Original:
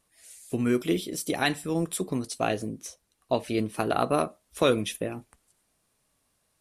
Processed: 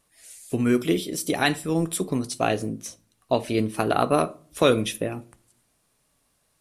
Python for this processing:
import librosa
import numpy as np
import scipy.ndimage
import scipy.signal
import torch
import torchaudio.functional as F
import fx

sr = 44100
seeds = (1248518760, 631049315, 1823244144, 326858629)

y = fx.room_shoebox(x, sr, seeds[0], volume_m3=480.0, walls='furnished', distance_m=0.3)
y = y * librosa.db_to_amplitude(3.5)